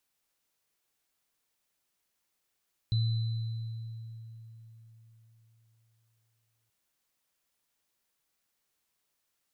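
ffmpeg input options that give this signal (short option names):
-f lavfi -i "aevalsrc='0.0668*pow(10,-3*t/4.12)*sin(2*PI*113*t)+0.015*pow(10,-3*t/2.08)*sin(2*PI*4010*t)':d=3.78:s=44100"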